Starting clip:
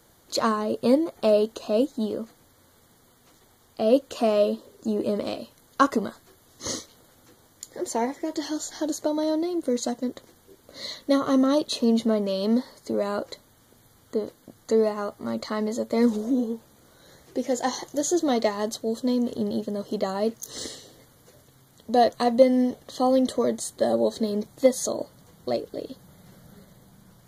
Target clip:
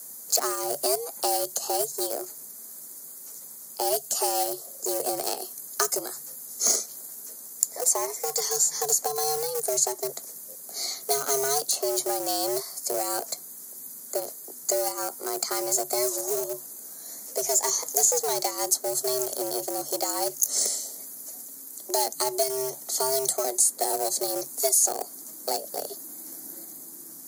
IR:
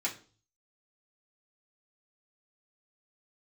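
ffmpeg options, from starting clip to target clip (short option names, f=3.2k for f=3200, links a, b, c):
-filter_complex "[0:a]acrossover=split=180|450|2900[a][b][c][d];[a]acompressor=threshold=-42dB:ratio=4[e];[b]acompressor=threshold=-36dB:ratio=4[f];[c]acompressor=threshold=-32dB:ratio=4[g];[d]acompressor=threshold=-40dB:ratio=4[h];[e][f][g][h]amix=inputs=4:normalize=0,asplit=2[i][j];[j]aeval=exprs='val(0)*gte(abs(val(0)),0.0447)':c=same,volume=-9dB[k];[i][k]amix=inputs=2:normalize=0,afreqshift=140,aexciter=amount=8.5:drive=7.4:freq=5.2k,volume=-1dB"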